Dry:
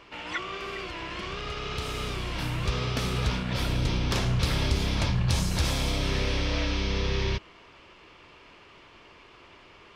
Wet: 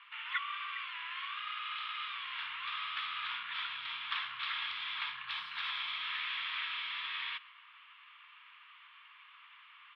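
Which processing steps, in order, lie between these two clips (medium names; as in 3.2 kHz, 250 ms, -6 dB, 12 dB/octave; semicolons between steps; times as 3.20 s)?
elliptic band-pass 1.1–3.5 kHz, stop band 40 dB; on a send: delay 127 ms -22 dB; on the sum: trim -2 dB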